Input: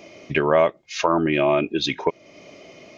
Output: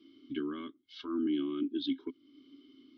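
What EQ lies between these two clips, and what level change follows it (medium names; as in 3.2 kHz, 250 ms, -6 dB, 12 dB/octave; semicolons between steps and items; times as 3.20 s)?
vowel filter i; static phaser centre 660 Hz, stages 6; static phaser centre 1.9 kHz, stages 6; +7.0 dB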